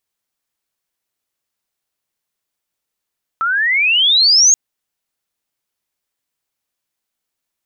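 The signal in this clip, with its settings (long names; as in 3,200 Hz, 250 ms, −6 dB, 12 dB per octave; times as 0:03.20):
glide logarithmic 1,300 Hz → 6,700 Hz −14 dBFS → −6 dBFS 1.13 s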